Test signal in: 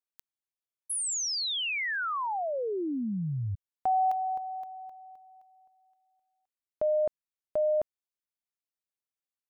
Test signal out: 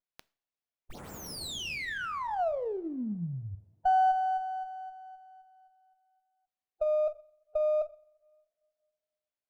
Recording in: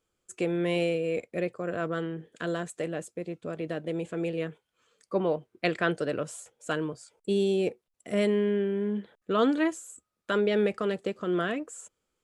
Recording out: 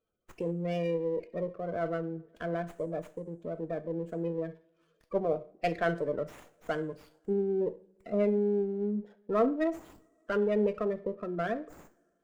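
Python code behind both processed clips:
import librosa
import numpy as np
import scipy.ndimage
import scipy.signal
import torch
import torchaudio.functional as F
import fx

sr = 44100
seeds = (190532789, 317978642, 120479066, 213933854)

y = fx.spec_gate(x, sr, threshold_db=-15, keep='strong')
y = fx.peak_eq(y, sr, hz=670.0, db=8.0, octaves=0.44)
y = fx.rev_double_slope(y, sr, seeds[0], early_s=0.4, late_s=2.2, knee_db=-26, drr_db=9.0)
y = fx.running_max(y, sr, window=5)
y = y * librosa.db_to_amplitude(-4.5)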